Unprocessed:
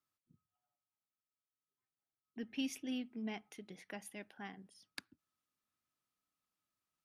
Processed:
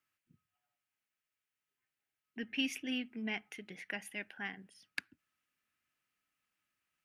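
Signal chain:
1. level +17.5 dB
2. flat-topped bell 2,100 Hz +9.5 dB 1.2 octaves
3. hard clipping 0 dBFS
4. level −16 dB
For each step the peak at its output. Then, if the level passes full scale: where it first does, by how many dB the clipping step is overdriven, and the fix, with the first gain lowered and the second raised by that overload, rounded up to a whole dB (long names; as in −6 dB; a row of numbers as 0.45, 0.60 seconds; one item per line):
−6.0, −3.0, −3.0, −19.0 dBFS
no step passes full scale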